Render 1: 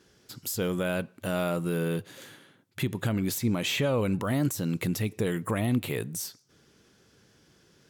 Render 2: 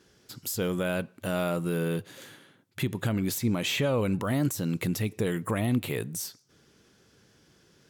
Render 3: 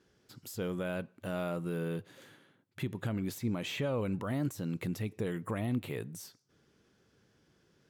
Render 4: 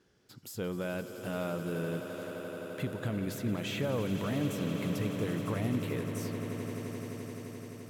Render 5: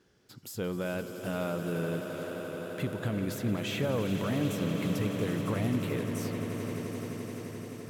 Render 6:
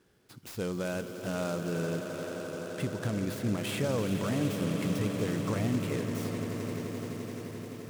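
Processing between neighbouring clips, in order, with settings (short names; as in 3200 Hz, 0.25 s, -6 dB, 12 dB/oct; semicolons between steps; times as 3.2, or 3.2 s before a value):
nothing audible
high shelf 3500 Hz -7.5 dB; gain -6.5 dB
swelling echo 86 ms, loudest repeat 8, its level -13 dB
warbling echo 0.387 s, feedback 76%, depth 96 cents, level -15 dB; gain +2 dB
noise-modulated delay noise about 5400 Hz, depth 0.032 ms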